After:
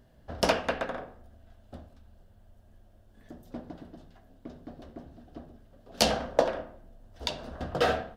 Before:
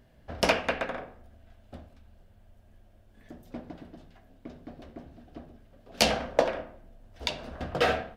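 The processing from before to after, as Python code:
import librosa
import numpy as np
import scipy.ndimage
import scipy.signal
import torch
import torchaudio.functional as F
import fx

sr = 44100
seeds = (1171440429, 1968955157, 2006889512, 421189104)

y = fx.peak_eq(x, sr, hz=2300.0, db=-7.5, octaves=0.53)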